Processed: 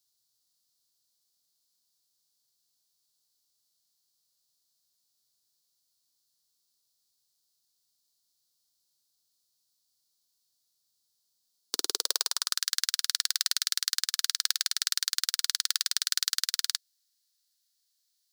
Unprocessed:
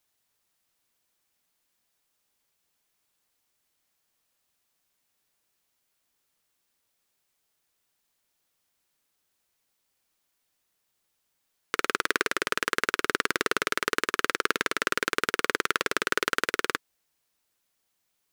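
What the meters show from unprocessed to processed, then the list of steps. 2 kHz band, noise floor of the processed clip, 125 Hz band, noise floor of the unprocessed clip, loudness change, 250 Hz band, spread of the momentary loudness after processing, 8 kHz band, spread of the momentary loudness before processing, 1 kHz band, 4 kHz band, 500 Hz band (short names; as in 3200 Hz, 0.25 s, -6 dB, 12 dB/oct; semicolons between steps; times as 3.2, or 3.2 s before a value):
-13.0 dB, -77 dBFS, under -30 dB, -77 dBFS, 0.0 dB, -21.0 dB, 3 LU, +8.0 dB, 2 LU, -16.5 dB, +6.0 dB, -19.5 dB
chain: spectral whitening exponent 0.6; resonant high shelf 3200 Hz +11.5 dB, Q 3; high-pass sweep 110 Hz -> 1800 Hz, 11.32–12.66; gain -12.5 dB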